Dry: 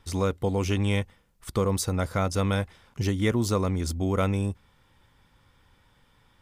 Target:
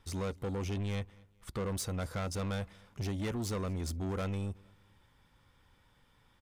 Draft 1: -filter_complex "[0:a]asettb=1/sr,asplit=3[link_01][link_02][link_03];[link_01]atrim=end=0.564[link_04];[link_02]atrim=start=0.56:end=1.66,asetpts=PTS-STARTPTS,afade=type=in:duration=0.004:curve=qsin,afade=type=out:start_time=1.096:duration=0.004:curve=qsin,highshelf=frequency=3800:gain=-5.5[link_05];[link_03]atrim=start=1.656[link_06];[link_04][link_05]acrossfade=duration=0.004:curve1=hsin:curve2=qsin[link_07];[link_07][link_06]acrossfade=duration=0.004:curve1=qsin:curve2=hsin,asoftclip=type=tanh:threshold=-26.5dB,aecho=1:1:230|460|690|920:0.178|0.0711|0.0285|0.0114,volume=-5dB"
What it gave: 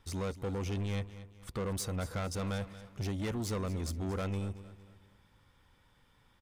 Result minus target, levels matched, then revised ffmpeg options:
echo-to-direct +11 dB
-filter_complex "[0:a]asettb=1/sr,asplit=3[link_01][link_02][link_03];[link_01]atrim=end=0.564[link_04];[link_02]atrim=start=0.56:end=1.66,asetpts=PTS-STARTPTS,afade=type=in:duration=0.004:curve=qsin,afade=type=out:start_time=1.096:duration=0.004:curve=qsin,highshelf=frequency=3800:gain=-5.5[link_05];[link_03]atrim=start=1.656[link_06];[link_04][link_05]acrossfade=duration=0.004:curve1=hsin:curve2=qsin[link_07];[link_07][link_06]acrossfade=duration=0.004:curve1=qsin:curve2=hsin,asoftclip=type=tanh:threshold=-26.5dB,aecho=1:1:230|460:0.0501|0.02,volume=-5dB"

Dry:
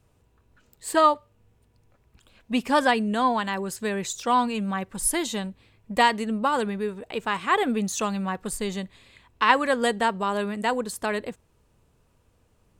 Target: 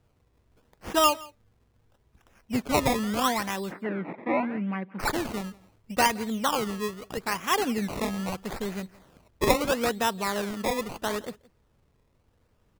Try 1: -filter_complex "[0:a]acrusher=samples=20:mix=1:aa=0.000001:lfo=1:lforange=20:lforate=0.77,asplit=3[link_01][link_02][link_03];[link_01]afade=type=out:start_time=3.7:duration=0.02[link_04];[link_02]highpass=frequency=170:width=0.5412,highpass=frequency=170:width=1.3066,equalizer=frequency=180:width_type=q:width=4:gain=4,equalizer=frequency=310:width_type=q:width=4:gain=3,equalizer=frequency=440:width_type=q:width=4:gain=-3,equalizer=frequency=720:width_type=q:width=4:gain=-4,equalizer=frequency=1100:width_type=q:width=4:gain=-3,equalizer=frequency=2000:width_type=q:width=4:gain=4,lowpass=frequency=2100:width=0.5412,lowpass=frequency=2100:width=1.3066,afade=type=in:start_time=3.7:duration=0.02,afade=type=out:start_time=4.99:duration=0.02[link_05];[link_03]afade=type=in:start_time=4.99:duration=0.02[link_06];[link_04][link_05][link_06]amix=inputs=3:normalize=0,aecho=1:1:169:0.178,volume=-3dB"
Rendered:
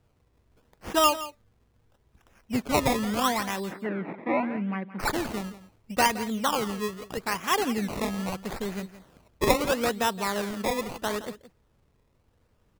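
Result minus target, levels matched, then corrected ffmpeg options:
echo-to-direct +7.5 dB
-filter_complex "[0:a]acrusher=samples=20:mix=1:aa=0.000001:lfo=1:lforange=20:lforate=0.77,asplit=3[link_01][link_02][link_03];[link_01]afade=type=out:start_time=3.7:duration=0.02[link_04];[link_02]highpass=frequency=170:width=0.5412,highpass=frequency=170:width=1.3066,equalizer=frequency=180:width_type=q:width=4:gain=4,equalizer=frequency=310:width_type=q:width=4:gain=3,equalizer=frequency=440:width_type=q:width=4:gain=-3,equalizer=frequency=720:width_type=q:width=4:gain=-4,equalizer=frequency=1100:width_type=q:width=4:gain=-3,equalizer=frequency=2000:width_type=q:width=4:gain=4,lowpass=frequency=2100:width=0.5412,lowpass=frequency=2100:width=1.3066,afade=type=in:start_time=3.7:duration=0.02,afade=type=out:start_time=4.99:duration=0.02[link_05];[link_03]afade=type=in:start_time=4.99:duration=0.02[link_06];[link_04][link_05][link_06]amix=inputs=3:normalize=0,aecho=1:1:169:0.075,volume=-3dB"

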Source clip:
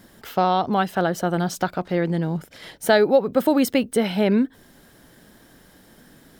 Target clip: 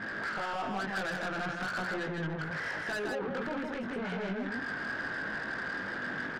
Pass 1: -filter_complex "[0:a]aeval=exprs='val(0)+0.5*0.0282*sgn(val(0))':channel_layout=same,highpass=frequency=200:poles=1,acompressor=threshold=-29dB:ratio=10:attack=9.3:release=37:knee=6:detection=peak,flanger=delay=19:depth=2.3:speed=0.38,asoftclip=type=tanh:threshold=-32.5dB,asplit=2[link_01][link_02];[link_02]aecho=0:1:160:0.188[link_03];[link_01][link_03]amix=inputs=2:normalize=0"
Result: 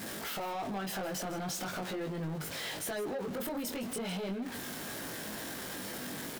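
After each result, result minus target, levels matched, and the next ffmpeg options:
2,000 Hz band −8.0 dB; echo-to-direct −11 dB
-filter_complex "[0:a]aeval=exprs='val(0)+0.5*0.0282*sgn(val(0))':channel_layout=same,highpass=frequency=200:poles=1,acompressor=threshold=-29dB:ratio=10:attack=9.3:release=37:knee=6:detection=peak,lowpass=frequency=1600:width_type=q:width=5.1,flanger=delay=19:depth=2.3:speed=0.38,asoftclip=type=tanh:threshold=-32.5dB,asplit=2[link_01][link_02];[link_02]aecho=0:1:160:0.188[link_03];[link_01][link_03]amix=inputs=2:normalize=0"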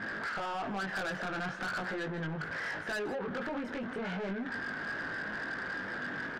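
echo-to-direct −11 dB
-filter_complex "[0:a]aeval=exprs='val(0)+0.5*0.0282*sgn(val(0))':channel_layout=same,highpass=frequency=200:poles=1,acompressor=threshold=-29dB:ratio=10:attack=9.3:release=37:knee=6:detection=peak,lowpass=frequency=1600:width_type=q:width=5.1,flanger=delay=19:depth=2.3:speed=0.38,asoftclip=type=tanh:threshold=-32.5dB,asplit=2[link_01][link_02];[link_02]aecho=0:1:160:0.668[link_03];[link_01][link_03]amix=inputs=2:normalize=0"

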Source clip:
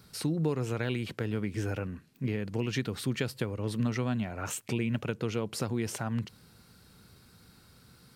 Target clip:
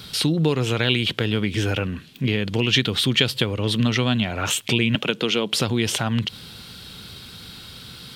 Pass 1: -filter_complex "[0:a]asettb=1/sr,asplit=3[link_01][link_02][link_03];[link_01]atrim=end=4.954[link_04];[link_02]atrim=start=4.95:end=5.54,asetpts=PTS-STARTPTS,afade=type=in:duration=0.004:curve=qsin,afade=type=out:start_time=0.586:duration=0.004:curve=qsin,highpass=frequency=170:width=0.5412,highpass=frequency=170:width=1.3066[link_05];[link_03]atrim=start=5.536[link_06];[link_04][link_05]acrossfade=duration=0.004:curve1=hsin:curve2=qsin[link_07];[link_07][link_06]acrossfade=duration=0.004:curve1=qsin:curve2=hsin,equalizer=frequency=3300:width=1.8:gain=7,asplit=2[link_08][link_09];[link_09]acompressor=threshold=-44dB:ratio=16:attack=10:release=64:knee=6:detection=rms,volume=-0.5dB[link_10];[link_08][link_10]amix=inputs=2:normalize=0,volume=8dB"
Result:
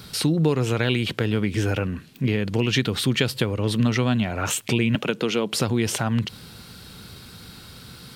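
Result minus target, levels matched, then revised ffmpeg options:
4,000 Hz band −5.0 dB
-filter_complex "[0:a]asettb=1/sr,asplit=3[link_01][link_02][link_03];[link_01]atrim=end=4.954[link_04];[link_02]atrim=start=4.95:end=5.54,asetpts=PTS-STARTPTS,afade=type=in:duration=0.004:curve=qsin,afade=type=out:start_time=0.586:duration=0.004:curve=qsin,highpass=frequency=170:width=0.5412,highpass=frequency=170:width=1.3066[link_05];[link_03]atrim=start=5.536[link_06];[link_04][link_05]acrossfade=duration=0.004:curve1=hsin:curve2=qsin[link_07];[link_07][link_06]acrossfade=duration=0.004:curve1=qsin:curve2=hsin,equalizer=frequency=3300:width=1.8:gain=16,asplit=2[link_08][link_09];[link_09]acompressor=threshold=-44dB:ratio=16:attack=10:release=64:knee=6:detection=rms,volume=-0.5dB[link_10];[link_08][link_10]amix=inputs=2:normalize=0,volume=8dB"

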